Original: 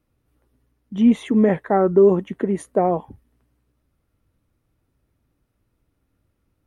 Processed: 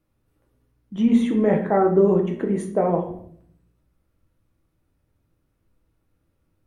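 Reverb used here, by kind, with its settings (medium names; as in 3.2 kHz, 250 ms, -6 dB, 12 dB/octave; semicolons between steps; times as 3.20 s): simulated room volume 100 m³, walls mixed, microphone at 0.66 m; trim -3 dB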